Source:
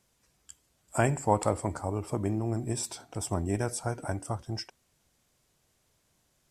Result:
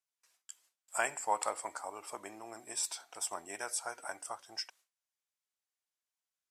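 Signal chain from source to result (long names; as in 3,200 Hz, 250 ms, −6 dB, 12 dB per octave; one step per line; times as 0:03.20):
high-pass filter 1,000 Hz 12 dB per octave
noise gate with hold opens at −60 dBFS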